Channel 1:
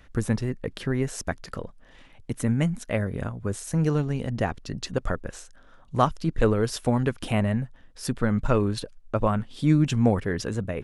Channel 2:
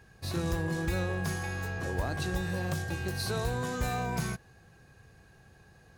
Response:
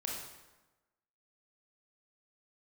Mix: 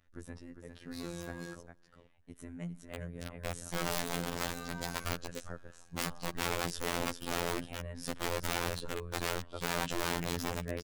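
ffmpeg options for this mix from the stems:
-filter_complex "[0:a]volume=-6.5dB,afade=t=in:st=2.9:d=0.63:silence=0.334965,asplit=3[a][b][c];[b]volume=-21.5dB[d];[c]volume=-7dB[e];[1:a]highpass=f=320:p=1,adelay=700,volume=-6dB,asplit=3[f][g][h];[f]atrim=end=1.54,asetpts=PTS-STARTPTS,afade=t=out:st=1.536:d=0.004:c=hsin[i];[g]atrim=start=1.54:end=3.91,asetpts=PTS-STARTPTS,volume=0[j];[h]atrim=start=3.91,asetpts=PTS-STARTPTS,afade=t=in:d=0.004:c=hsin[k];[i][j][k]concat=n=3:v=0:a=1,asplit=2[l][m];[m]volume=-16dB[n];[2:a]atrim=start_sample=2205[o];[d][n]amix=inputs=2:normalize=0[p];[p][o]afir=irnorm=-1:irlink=0[q];[e]aecho=0:1:403:1[r];[a][l][q][r]amix=inputs=4:normalize=0,aeval=exprs='(mod(18.8*val(0)+1,2)-1)/18.8':c=same,afftfilt=real='hypot(re,im)*cos(PI*b)':imag='0':win_size=2048:overlap=0.75"

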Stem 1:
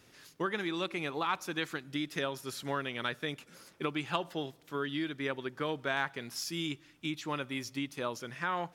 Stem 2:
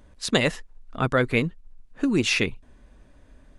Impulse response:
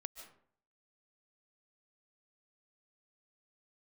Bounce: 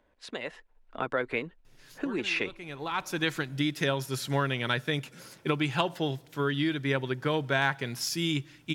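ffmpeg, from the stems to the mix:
-filter_complex "[0:a]equalizer=f=130:w=3.5:g=9.5,adelay=1650,volume=-2dB[a];[1:a]acompressor=threshold=-25dB:ratio=4,acrossover=split=310 3600:gain=0.178 1 0.2[b][c][d];[b][c][d]amix=inputs=3:normalize=0,volume=-7dB,asplit=2[e][f];[f]apad=whole_len=458488[g];[a][g]sidechaincompress=threshold=-53dB:ratio=6:attack=26:release=544[h];[h][e]amix=inputs=2:normalize=0,bandreject=f=1.2k:w=11,dynaudnorm=f=300:g=5:m=8dB"

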